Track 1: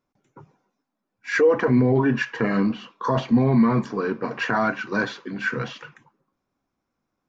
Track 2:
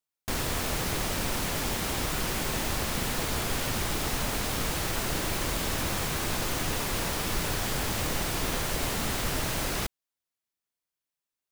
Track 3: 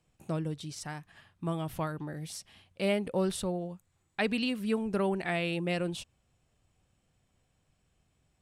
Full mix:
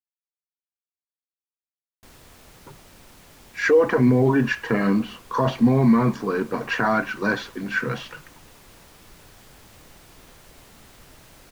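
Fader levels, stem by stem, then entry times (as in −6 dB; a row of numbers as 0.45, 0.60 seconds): +1.0 dB, −19.5 dB, muted; 2.30 s, 1.75 s, muted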